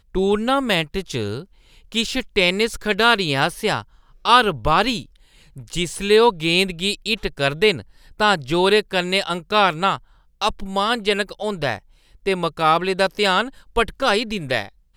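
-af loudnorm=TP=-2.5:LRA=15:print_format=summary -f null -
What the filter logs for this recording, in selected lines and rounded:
Input Integrated:    -19.9 LUFS
Input True Peak:      -1.7 dBTP
Input LRA:             3.1 LU
Input Threshold:     -30.3 LUFS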